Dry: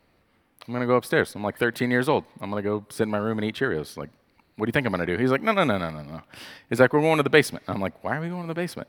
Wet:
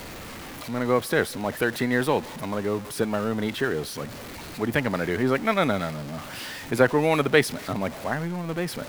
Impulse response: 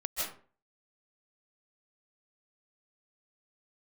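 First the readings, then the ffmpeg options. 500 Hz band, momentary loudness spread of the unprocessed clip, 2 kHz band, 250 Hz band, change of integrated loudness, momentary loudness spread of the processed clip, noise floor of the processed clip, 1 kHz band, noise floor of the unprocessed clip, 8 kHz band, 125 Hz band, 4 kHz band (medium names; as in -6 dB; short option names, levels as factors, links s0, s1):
-1.0 dB, 15 LU, -1.0 dB, -0.5 dB, -1.0 dB, 13 LU, -39 dBFS, -1.0 dB, -65 dBFS, +4.5 dB, -0.5 dB, +1.0 dB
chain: -af "aeval=exprs='val(0)+0.5*0.0282*sgn(val(0))':c=same,volume=0.794"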